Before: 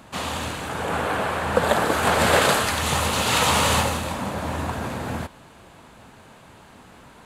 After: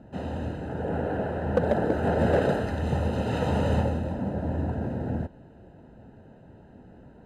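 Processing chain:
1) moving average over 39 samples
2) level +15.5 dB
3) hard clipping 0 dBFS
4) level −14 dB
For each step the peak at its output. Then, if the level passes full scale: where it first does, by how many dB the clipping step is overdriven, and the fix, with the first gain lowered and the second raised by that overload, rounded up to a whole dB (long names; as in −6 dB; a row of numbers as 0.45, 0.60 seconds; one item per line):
−9.0, +6.5, 0.0, −14.0 dBFS
step 2, 6.5 dB
step 2 +8.5 dB, step 4 −7 dB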